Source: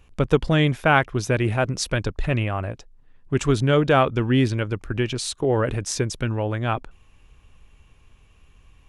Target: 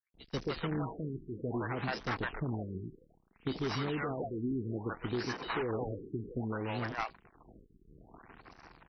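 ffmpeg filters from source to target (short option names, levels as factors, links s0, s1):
-filter_complex "[0:a]aeval=exprs='val(0)+0.5*0.0668*sgn(val(0))':c=same,flanger=delay=1.2:depth=5.1:regen=79:speed=0.52:shape=sinusoidal,acrossover=split=880[s0][s1];[s0]alimiter=limit=0.119:level=0:latency=1:release=29[s2];[s2][s1]amix=inputs=2:normalize=0,acrusher=samples=13:mix=1:aa=0.000001,highpass=48,equalizer=f=580:w=6.4:g=-8.5,acrossover=split=540|2900[s3][s4][s5];[s3]adelay=140[s6];[s4]adelay=300[s7];[s6][s7][s5]amix=inputs=3:normalize=0,agate=range=0.0224:threshold=0.0562:ratio=3:detection=peak,equalizer=f=74:w=0.66:g=-13,asplit=2[s8][s9];[s9]aeval=exprs='(mod(14.1*val(0)+1,2)-1)/14.1':c=same,volume=0.447[s10];[s8][s10]amix=inputs=2:normalize=0,acompressor=threshold=0.0251:ratio=4,afftfilt=real='re*lt(b*sr/1024,420*pow(6200/420,0.5+0.5*sin(2*PI*0.61*pts/sr)))':imag='im*lt(b*sr/1024,420*pow(6200/420,0.5+0.5*sin(2*PI*0.61*pts/sr)))':win_size=1024:overlap=0.75"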